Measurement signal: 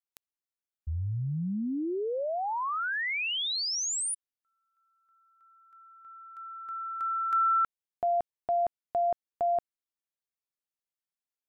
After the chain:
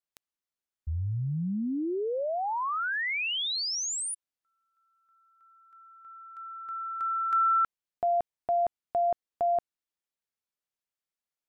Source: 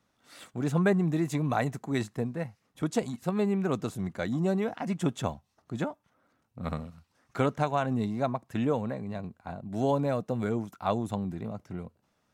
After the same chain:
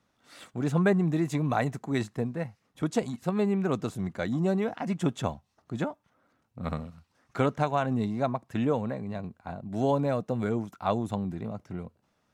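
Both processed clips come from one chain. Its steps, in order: treble shelf 9.3 kHz -6 dB; trim +1 dB

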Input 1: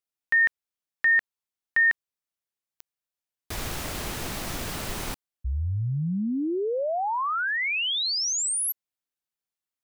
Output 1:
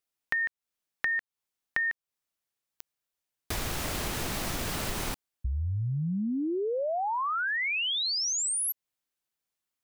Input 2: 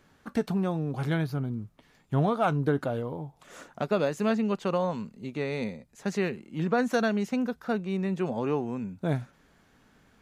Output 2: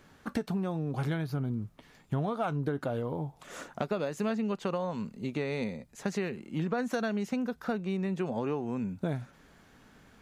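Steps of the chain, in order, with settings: compression, threshold -32 dBFS; trim +3.5 dB

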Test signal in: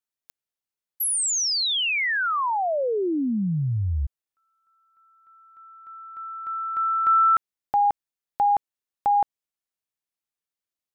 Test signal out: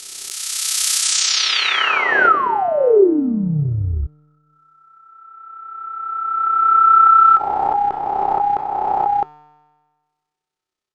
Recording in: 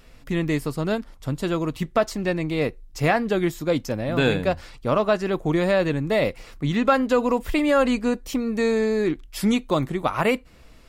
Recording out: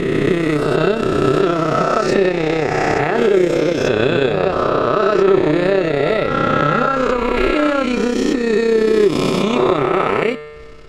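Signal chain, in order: reverse spectral sustain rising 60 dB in 2.58 s; low-pass 6.5 kHz 12 dB/octave; compression, threshold -20 dBFS; transient shaper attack 0 dB, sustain -8 dB; small resonant body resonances 390/1300 Hz, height 13 dB, ringing for 70 ms; AM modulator 32 Hz, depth 40%; feedback comb 150 Hz, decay 1.5 s, mix 70%; loudness maximiser +20.5 dB; swell ahead of each attack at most 32 dB/s; trim -3 dB

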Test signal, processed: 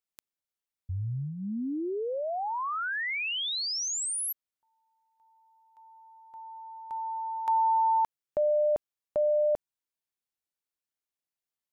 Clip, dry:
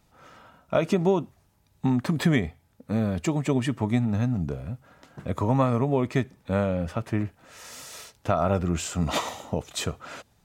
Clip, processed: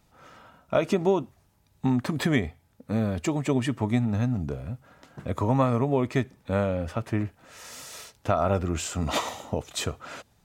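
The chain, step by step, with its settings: dynamic bell 170 Hz, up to -7 dB, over -44 dBFS, Q 5.3

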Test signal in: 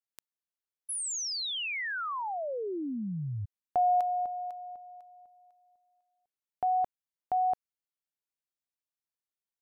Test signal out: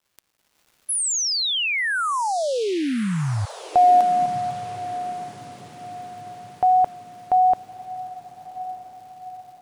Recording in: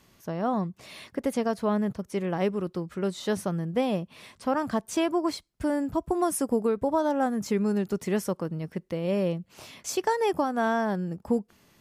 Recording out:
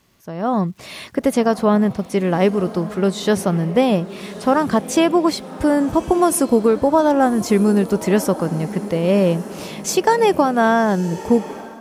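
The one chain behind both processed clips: crackle 580 per s -59 dBFS; echo that smears into a reverb 1200 ms, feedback 52%, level -15 dB; level rider gain up to 11 dB

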